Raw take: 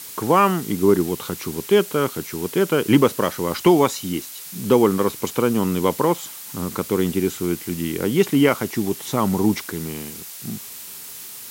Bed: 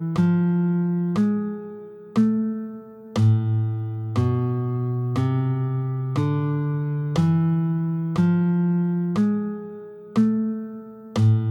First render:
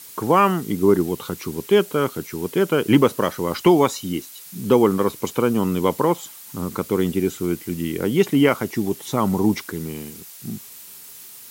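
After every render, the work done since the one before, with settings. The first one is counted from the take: denoiser 6 dB, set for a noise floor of -37 dBFS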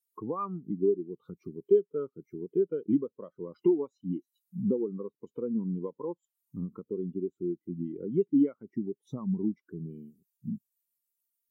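compressor 5:1, threshold -27 dBFS, peak gain reduction 16 dB; spectral expander 2.5:1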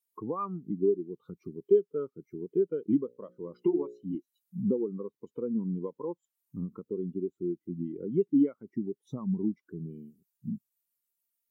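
3.06–4.15 notches 60/120/180/240/300/360/420/480/540 Hz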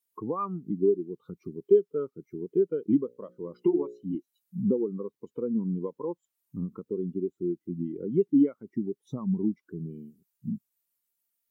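gain +2.5 dB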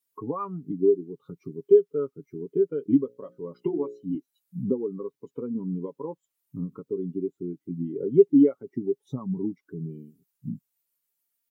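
7.89–9.13 spectral gain 330–900 Hz +6 dB; comb 7.2 ms, depth 56%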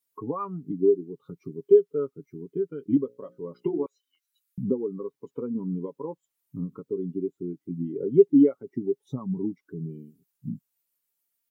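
2.27–2.97 bell 540 Hz -11.5 dB 0.88 oct; 3.86–4.58 steep high-pass 1100 Hz; 5.11–5.82 bell 960 Hz +3.5 dB 1.7 oct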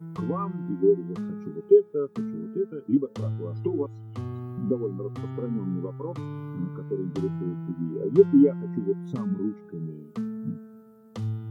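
add bed -13 dB

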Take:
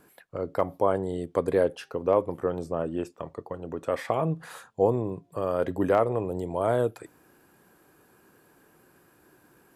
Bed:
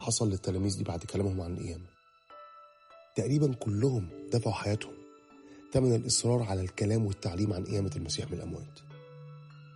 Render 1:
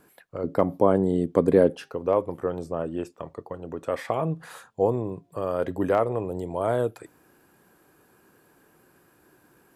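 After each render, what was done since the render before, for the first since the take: 0.44–1.88 bell 220 Hz +11.5 dB 1.8 oct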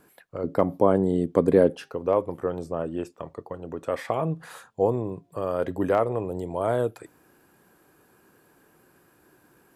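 nothing audible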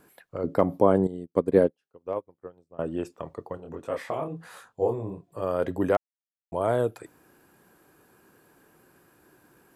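1.07–2.79 upward expander 2.5:1, over -40 dBFS; 3.57–5.41 detuned doubles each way 53 cents -> 41 cents; 5.97–6.52 mute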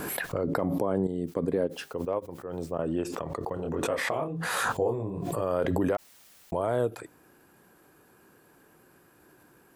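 limiter -17.5 dBFS, peak gain reduction 11 dB; backwards sustainer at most 21 dB/s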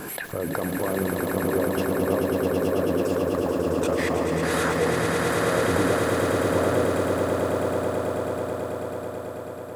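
swelling echo 0.109 s, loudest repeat 8, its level -5.5 dB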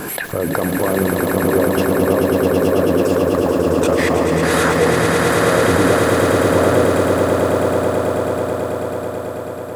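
gain +8.5 dB; limiter -3 dBFS, peak gain reduction 2 dB

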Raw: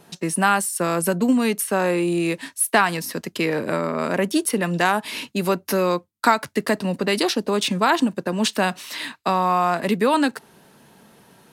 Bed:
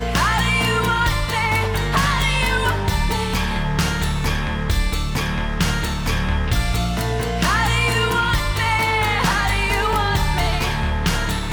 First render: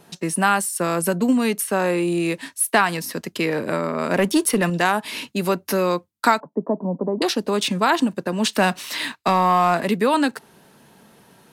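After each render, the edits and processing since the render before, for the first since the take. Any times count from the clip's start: 4.11–4.7 sample leveller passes 1; 6.4–7.22 Chebyshev band-pass 160–1000 Hz, order 4; 8.56–9.83 sample leveller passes 1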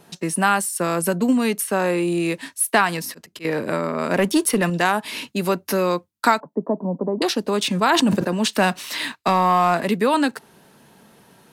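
2.96–3.45 auto swell 0.179 s; 7.69–8.43 sustainer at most 28 dB/s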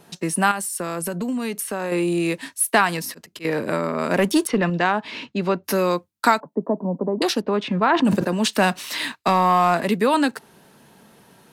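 0.51–1.92 compressor 3:1, threshold -24 dBFS; 4.47–5.64 air absorption 160 m; 7.41–8.05 LPF 2200 Hz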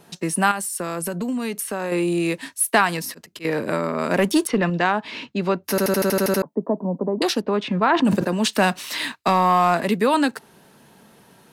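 5.7 stutter in place 0.08 s, 9 plays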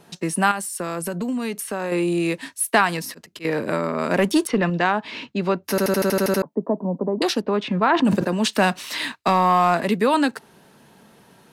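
high shelf 10000 Hz -5 dB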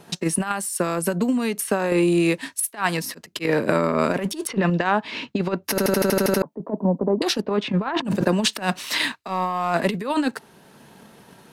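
transient shaper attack +6 dB, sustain -2 dB; negative-ratio compressor -20 dBFS, ratio -0.5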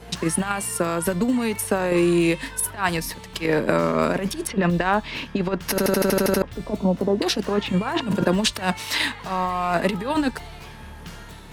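add bed -19.5 dB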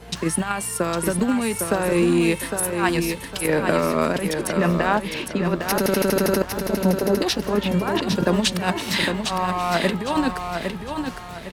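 feedback echo 0.807 s, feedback 34%, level -6 dB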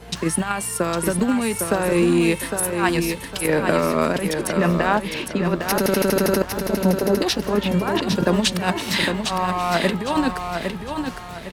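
gain +1 dB

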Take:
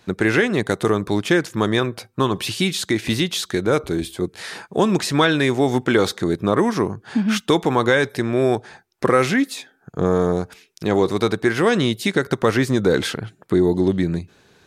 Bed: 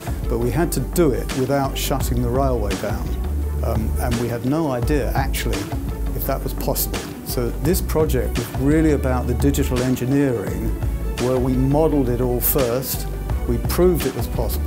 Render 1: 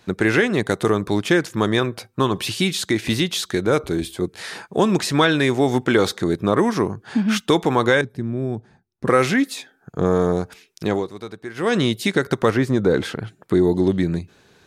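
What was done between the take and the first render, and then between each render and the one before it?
8.01–9.07 EQ curve 210 Hz 0 dB, 480 Hz -13 dB, 690 Hz -14 dB, 2200 Hz -19 dB; 10.86–11.76 dip -14.5 dB, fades 0.22 s; 12.5–13.19 high shelf 2200 Hz -8.5 dB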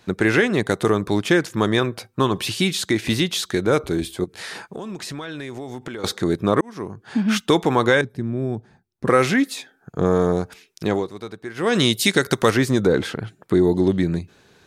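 4.24–6.04 compressor 12:1, threshold -28 dBFS; 6.61–7.27 fade in; 11.75–12.87 high shelf 2900 Hz +11 dB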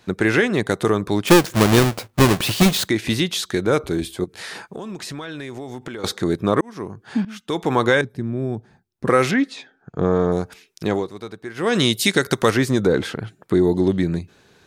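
1.27–2.88 half-waves squared off; 7.25–7.73 fade in quadratic, from -17.5 dB; 9.31–10.32 air absorption 120 m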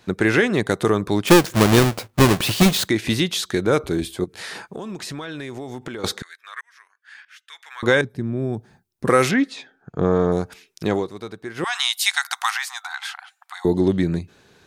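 6.22–7.83 ladder high-pass 1500 Hz, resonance 55%; 8.53–9.29 high shelf 6100 Hz +8 dB; 11.64–13.65 brick-wall FIR high-pass 710 Hz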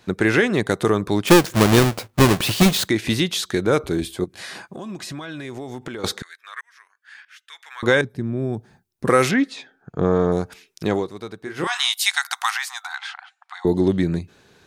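4.28–5.45 notch comb 450 Hz; 11.43–11.94 doubler 29 ms -7 dB; 12.98–13.67 air absorption 93 m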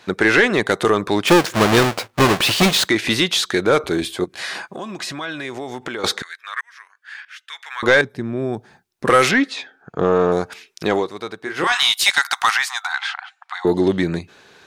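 overdrive pedal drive 14 dB, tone 4500 Hz, clips at -2.5 dBFS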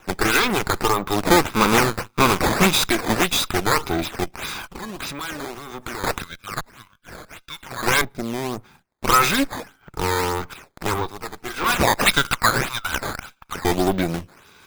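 minimum comb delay 0.82 ms; decimation with a swept rate 9×, swing 160% 1.7 Hz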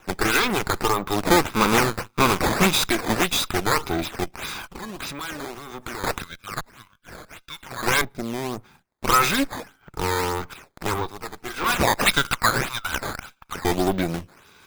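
gain -2 dB

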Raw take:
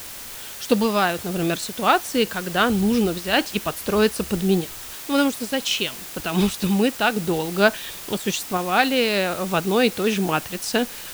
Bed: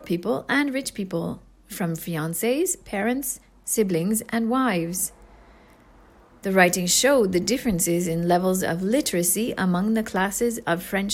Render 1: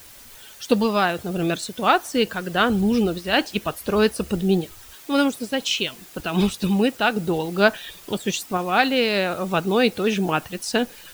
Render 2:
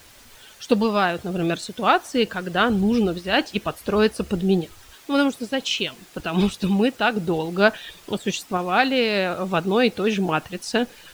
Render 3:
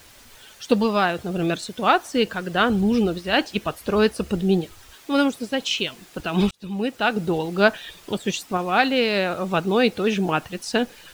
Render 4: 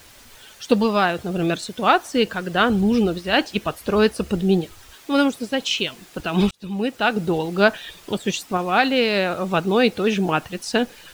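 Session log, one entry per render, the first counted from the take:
denoiser 10 dB, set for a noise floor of -36 dBFS
high shelf 9300 Hz -10.5 dB
6.51–7.11 fade in
gain +1.5 dB; limiter -3 dBFS, peak gain reduction 1.5 dB

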